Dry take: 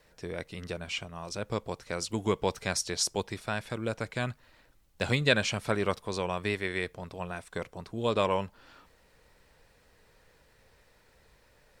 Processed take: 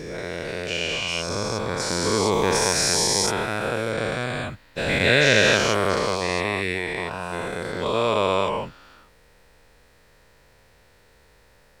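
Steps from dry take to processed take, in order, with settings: spectral dilation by 0.48 s

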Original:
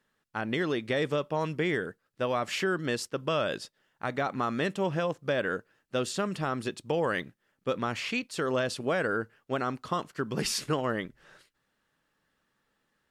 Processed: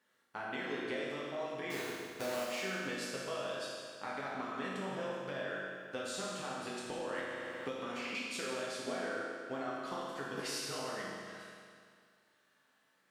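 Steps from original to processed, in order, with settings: 1.7–2.46 half-waves squared off; HPF 370 Hz 6 dB/oct; compressor 6:1, threshold -40 dBFS, peak gain reduction 16.5 dB; reverb RT60 2.1 s, pre-delay 8 ms, DRR -6.5 dB; 7.18–8.15 three-band squash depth 100%; gain -3 dB

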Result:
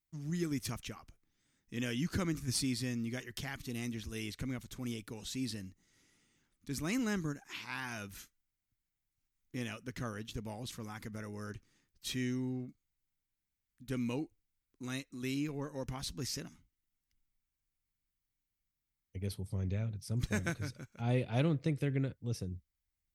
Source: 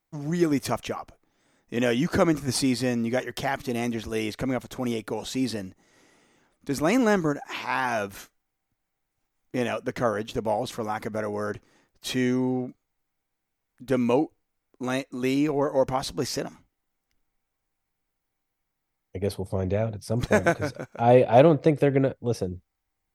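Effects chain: passive tone stack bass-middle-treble 6-0-2; gain +8 dB

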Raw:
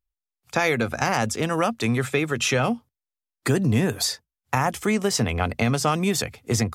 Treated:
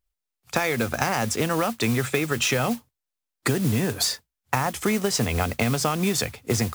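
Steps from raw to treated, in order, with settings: compressor, threshold -23 dBFS, peak gain reduction 7.5 dB; modulation noise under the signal 14 dB; gain +3.5 dB

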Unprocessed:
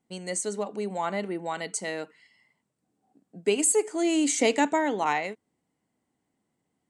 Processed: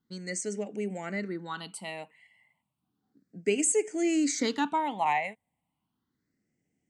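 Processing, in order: phaser stages 6, 0.33 Hz, lowest notch 360–1100 Hz

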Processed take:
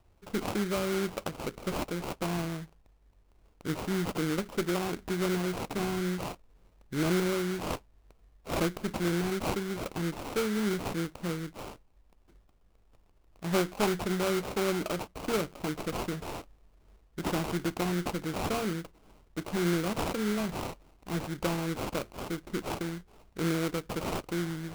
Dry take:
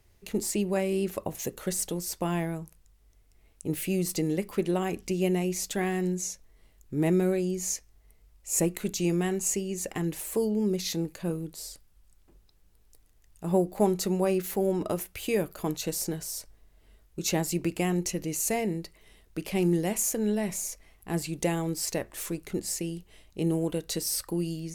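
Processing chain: one diode to ground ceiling -20.5 dBFS; sample-rate reducer 1800 Hz, jitter 20%; gain -1 dB

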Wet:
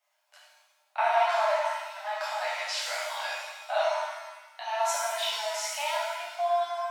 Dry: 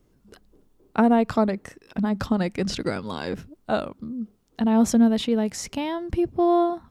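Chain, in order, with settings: rippled Chebyshev high-pass 590 Hz, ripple 6 dB; shimmer reverb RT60 1.1 s, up +7 st, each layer -8 dB, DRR -7.5 dB; gain -3.5 dB

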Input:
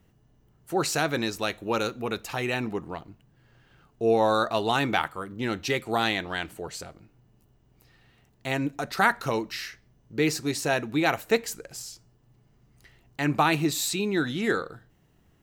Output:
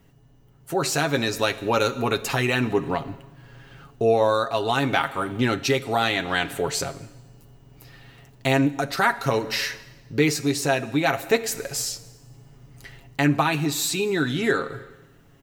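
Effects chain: plate-style reverb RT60 1.2 s, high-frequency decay 1×, DRR 15.5 dB; in parallel at +1.5 dB: compressor, threshold -32 dBFS, peak gain reduction 15.5 dB; on the sum: comb 7.3 ms, depth 53%; vocal rider within 4 dB 0.5 s

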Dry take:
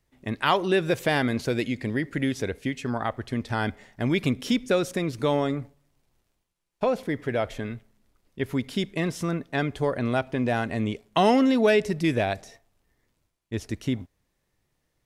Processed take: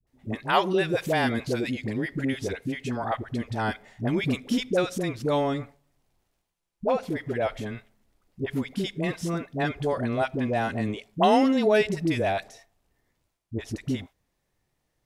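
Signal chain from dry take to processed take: bell 750 Hz +3.5 dB 0.55 oct; dispersion highs, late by 71 ms, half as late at 570 Hz; gain -1.5 dB

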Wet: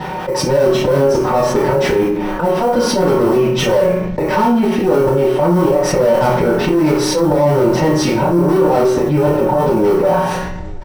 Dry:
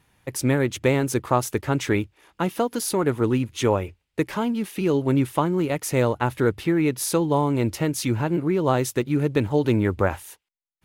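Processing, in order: LPF 3300 Hz 12 dB/oct; resonant low shelf 300 Hz -13.5 dB, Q 1.5; comb 5.4 ms, depth 81%; dynamic EQ 650 Hz, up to +5 dB, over -31 dBFS, Q 2.6; auto swell 0.162 s; tube stage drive 28 dB, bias 0.5; modulation noise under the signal 21 dB; flutter echo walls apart 5 m, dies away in 0.27 s; reverb RT60 0.45 s, pre-delay 3 ms, DRR -7 dB; fast leveller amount 70%; gain -5 dB

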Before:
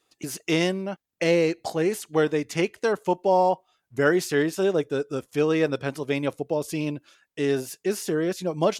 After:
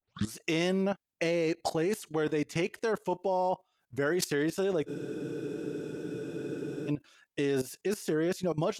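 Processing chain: tape start at the beginning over 0.34 s; level quantiser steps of 16 dB; spectral freeze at 4.89, 2.00 s; gain +4 dB

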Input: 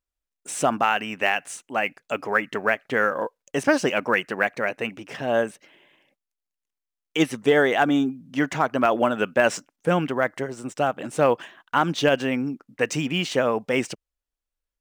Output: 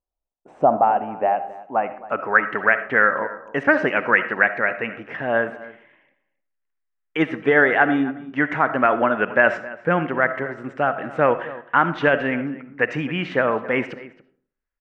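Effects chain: low-pass sweep 770 Hz -> 1800 Hz, 1.54–2.53; outdoor echo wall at 46 m, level -18 dB; on a send at -11.5 dB: reverb RT60 0.50 s, pre-delay 25 ms

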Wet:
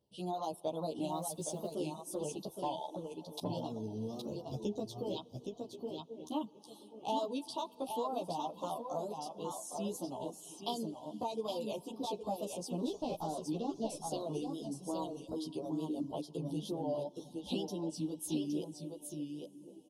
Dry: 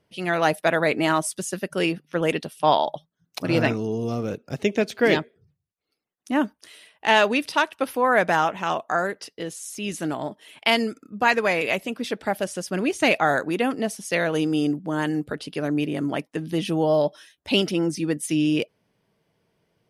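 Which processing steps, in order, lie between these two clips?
12.79–13.9 CVSD 32 kbps; elliptic band-stop 1000–3300 Hz, stop band 60 dB; wow and flutter 89 cents; narrowing echo 1.08 s, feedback 47%, band-pass 320 Hz, level -19 dB; compressor, threshold -25 dBFS, peak gain reduction 10.5 dB; 5.16–6.45 bell 2400 Hz +15 dB 1.3 oct; echo 0.817 s -5 dB; reverb RT60 3.8 s, pre-delay 18 ms, DRR 10.5 dB; reverb removal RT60 0.69 s; 1.11–1.73 modulation noise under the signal 32 dB; endless flanger 11.9 ms -0.41 Hz; gain -6 dB

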